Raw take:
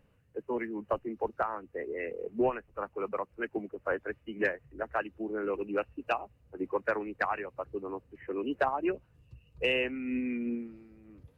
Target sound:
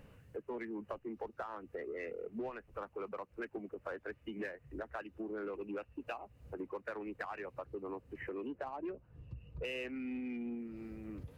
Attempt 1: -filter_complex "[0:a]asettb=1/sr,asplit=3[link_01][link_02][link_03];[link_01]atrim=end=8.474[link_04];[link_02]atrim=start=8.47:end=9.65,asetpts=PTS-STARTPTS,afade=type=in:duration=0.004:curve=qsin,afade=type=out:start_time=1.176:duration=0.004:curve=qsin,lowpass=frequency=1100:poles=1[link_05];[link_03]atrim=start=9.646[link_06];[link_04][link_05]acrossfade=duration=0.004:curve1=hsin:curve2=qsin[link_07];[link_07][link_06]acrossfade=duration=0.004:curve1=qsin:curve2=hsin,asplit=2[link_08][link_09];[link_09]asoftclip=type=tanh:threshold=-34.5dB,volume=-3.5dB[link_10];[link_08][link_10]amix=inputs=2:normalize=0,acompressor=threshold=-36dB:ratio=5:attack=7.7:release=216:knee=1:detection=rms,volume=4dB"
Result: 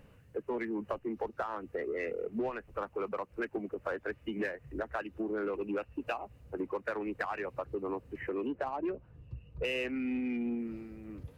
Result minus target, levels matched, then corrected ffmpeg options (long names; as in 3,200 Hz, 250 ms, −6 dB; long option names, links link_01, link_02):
downward compressor: peak gain reduction −7 dB
-filter_complex "[0:a]asettb=1/sr,asplit=3[link_01][link_02][link_03];[link_01]atrim=end=8.474[link_04];[link_02]atrim=start=8.47:end=9.65,asetpts=PTS-STARTPTS,afade=type=in:duration=0.004:curve=qsin,afade=type=out:start_time=1.176:duration=0.004:curve=qsin,lowpass=frequency=1100:poles=1[link_05];[link_03]atrim=start=9.646[link_06];[link_04][link_05]acrossfade=duration=0.004:curve1=hsin:curve2=qsin[link_07];[link_07][link_06]acrossfade=duration=0.004:curve1=qsin:curve2=hsin,asplit=2[link_08][link_09];[link_09]asoftclip=type=tanh:threshold=-34.5dB,volume=-3.5dB[link_10];[link_08][link_10]amix=inputs=2:normalize=0,acompressor=threshold=-44.5dB:ratio=5:attack=7.7:release=216:knee=1:detection=rms,volume=4dB"